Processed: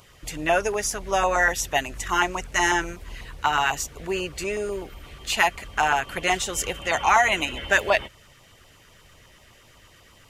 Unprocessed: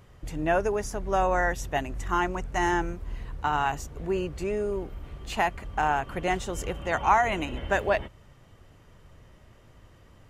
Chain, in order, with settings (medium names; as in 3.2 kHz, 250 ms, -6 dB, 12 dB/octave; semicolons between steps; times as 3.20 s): tilt shelf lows -8.5 dB, about 670 Hz; LFO notch saw down 8.1 Hz 610–2000 Hz; trim +4.5 dB